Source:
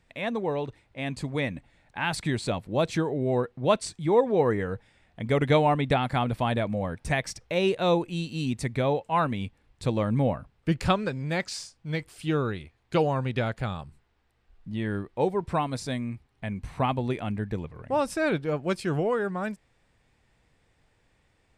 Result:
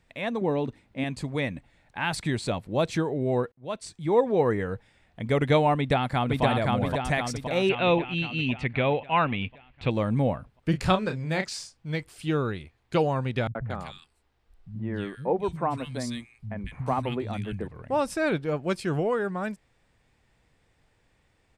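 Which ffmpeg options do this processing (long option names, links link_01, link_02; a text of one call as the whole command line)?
ffmpeg -i in.wav -filter_complex "[0:a]asettb=1/sr,asplit=3[link_01][link_02][link_03];[link_01]atrim=end=0.414[link_04];[link_02]atrim=start=0.41:end=1.04,asetpts=PTS-STARTPTS,afade=type=in:duration=0.004:curve=qsin,afade=type=out:start_time=0.626:duration=0.004:curve=qsin,equalizer=frequency=230:width_type=o:width=0.77:gain=12.5[link_05];[link_03]atrim=start=1.036[link_06];[link_04][link_05]acrossfade=duration=0.004:curve1=hsin:curve2=qsin[link_07];[link_07][link_06]acrossfade=duration=0.004:curve1=qsin:curve2=hsin,asplit=2[link_08][link_09];[link_09]afade=type=in:start_time=5.77:duration=0.01,afade=type=out:start_time=6.43:duration=0.01,aecho=0:1:520|1040|1560|2080|2600|3120|3640|4160:0.891251|0.490188|0.269603|0.148282|0.081555|0.0448553|0.0246704|0.0135687[link_10];[link_08][link_10]amix=inputs=2:normalize=0,asettb=1/sr,asplit=3[link_11][link_12][link_13];[link_11]atrim=end=7.694[link_14];[link_12]atrim=start=7.69:end=9.91,asetpts=PTS-STARTPTS,afade=type=in:duration=0.004:curve=qsin,afade=type=out:start_time=2.216:duration=0.004:curve=qsin,lowpass=frequency=2700:width_type=q:width=3.7[link_15];[link_13]atrim=start=9.906[link_16];[link_14][link_15]acrossfade=duration=0.004:curve1=hsin:curve2=qsin[link_17];[link_17][link_16]acrossfade=duration=0.004:curve1=qsin:curve2=hsin,asettb=1/sr,asplit=3[link_18][link_19][link_20];[link_18]atrim=end=10.704[link_21];[link_19]atrim=start=10.7:end=11.49,asetpts=PTS-STARTPTS,afade=type=in:duration=0.004:curve=qsin,afade=type=out:start_time=0.786:duration=0.004:curve=qsin,asplit=2[link_22][link_23];[link_23]adelay=32,volume=-7.5dB[link_24];[link_22][link_24]amix=inputs=2:normalize=0,atrim=end_sample=34839[link_25];[link_20]atrim=start=11.486[link_26];[link_21][link_25]acrossfade=duration=0.004:curve1=hsin:curve2=qsin[link_27];[link_27][link_26]acrossfade=duration=0.004:curve1=qsin:curve2=hsin,asettb=1/sr,asplit=3[link_28][link_29][link_30];[link_28]atrim=end=13.474[link_31];[link_29]atrim=start=13.47:end=17.68,asetpts=PTS-STARTPTS,afade=type=in:duration=0.004:curve=qsin,afade=type=out:start_time=4.206:duration=0.004:curve=qsin,acrossover=split=170|1900[link_32][link_33][link_34];[link_33]adelay=80[link_35];[link_34]adelay=230[link_36];[link_32][link_35][link_36]amix=inputs=3:normalize=0,atrim=end_sample=185661[link_37];[link_30]atrim=start=17.676[link_38];[link_31][link_37]acrossfade=duration=0.004:curve1=hsin:curve2=qsin[link_39];[link_39][link_38]acrossfade=duration=0.004:curve1=qsin:curve2=hsin,asplit=2[link_40][link_41];[link_40]atrim=end=3.52,asetpts=PTS-STARTPTS,afade=type=out:start_time=3.516:duration=0.004:curve=hsin[link_42];[link_41]atrim=start=3.52,asetpts=PTS-STARTPTS,afade=type=in:duration=0.68[link_43];[link_42][link_43]concat=n=2:v=0:a=1" out.wav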